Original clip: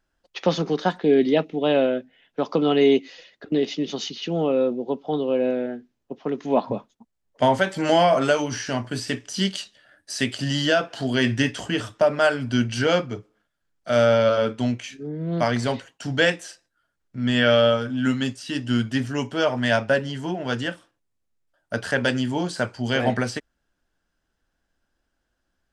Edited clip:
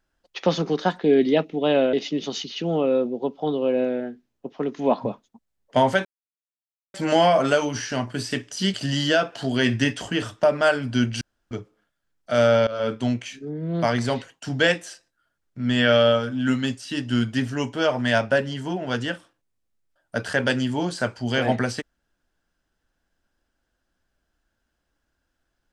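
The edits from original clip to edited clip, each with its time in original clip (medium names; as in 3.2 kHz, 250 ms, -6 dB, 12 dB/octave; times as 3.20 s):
1.93–3.59 s: delete
7.71 s: insert silence 0.89 s
9.51–10.32 s: delete
12.79–13.09 s: room tone
14.25–14.50 s: fade in, from -21.5 dB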